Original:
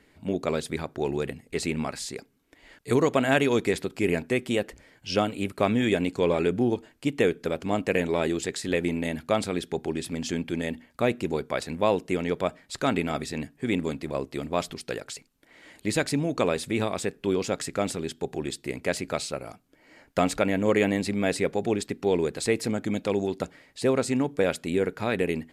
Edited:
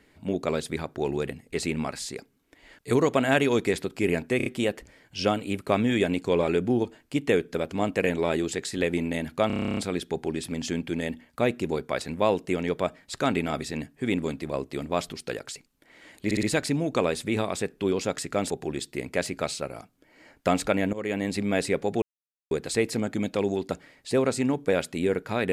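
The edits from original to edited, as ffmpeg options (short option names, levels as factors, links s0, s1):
-filter_complex "[0:a]asplit=21[s0][s1][s2][s3][s4][s5][s6][s7][s8][s9][s10][s11][s12][s13][s14][s15][s16][s17][s18][s19][s20];[s0]atrim=end=4.402[s21];[s1]atrim=start=4.368:end=4.402[s22];[s2]atrim=start=4.368:end=4.402[s23];[s3]atrim=start=4.368:end=9.412[s24];[s4]atrim=start=9.378:end=9.412[s25];[s5]atrim=start=9.378:end=9.412[s26];[s6]atrim=start=9.378:end=9.412[s27];[s7]atrim=start=9.378:end=9.412[s28];[s8]atrim=start=9.378:end=9.412[s29];[s9]atrim=start=9.378:end=9.412[s30];[s10]atrim=start=9.378:end=9.412[s31];[s11]atrim=start=9.378:end=9.412[s32];[s12]atrim=start=9.378:end=9.412[s33];[s13]atrim=start=9.378:end=15.922[s34];[s14]atrim=start=15.858:end=15.922[s35];[s15]atrim=start=15.858:end=15.922[s36];[s16]atrim=start=15.858:end=17.932[s37];[s17]atrim=start=18.208:end=20.64,asetpts=PTS-STARTPTS,afade=t=out:st=2.428:d=0.004:c=hsin:silence=0.141254[s38];[s18]atrim=start=20.64:end=21.73,asetpts=PTS-STARTPTS,afade=t=in:d=0.46:silence=0.141254,afade=t=out:st=1.086:d=0.004:c=hsin[s39];[s19]atrim=start=21.73:end=22.22,asetpts=PTS-STARTPTS,volume=0[s40];[s20]atrim=start=22.22,asetpts=PTS-STARTPTS,afade=t=in:d=0.004:c=hsin[s41];[s21][s22]acrossfade=d=0.004:c1=hsin:c2=hsin[s42];[s42][s23]acrossfade=d=0.004:c1=hsin:c2=hsin[s43];[s43][s24]acrossfade=d=0.004:c1=hsin:c2=hsin[s44];[s44][s25]acrossfade=d=0.004:c1=hsin:c2=hsin[s45];[s45][s26]acrossfade=d=0.004:c1=hsin:c2=hsin[s46];[s46][s27]acrossfade=d=0.004:c1=hsin:c2=hsin[s47];[s47][s28]acrossfade=d=0.004:c1=hsin:c2=hsin[s48];[s48][s29]acrossfade=d=0.004:c1=hsin:c2=hsin[s49];[s49][s30]acrossfade=d=0.004:c1=hsin:c2=hsin[s50];[s50][s31]acrossfade=d=0.004:c1=hsin:c2=hsin[s51];[s51][s32]acrossfade=d=0.004:c1=hsin:c2=hsin[s52];[s52][s33]acrossfade=d=0.004:c1=hsin:c2=hsin[s53];[s53][s34]acrossfade=d=0.004:c1=hsin:c2=hsin[s54];[s54][s35]acrossfade=d=0.004:c1=hsin:c2=hsin[s55];[s55][s36]acrossfade=d=0.004:c1=hsin:c2=hsin[s56];[s56][s37]acrossfade=d=0.004:c1=hsin:c2=hsin[s57];[s38][s39][s40][s41]concat=n=4:v=0:a=1[s58];[s57][s58]acrossfade=d=0.004:c1=hsin:c2=hsin"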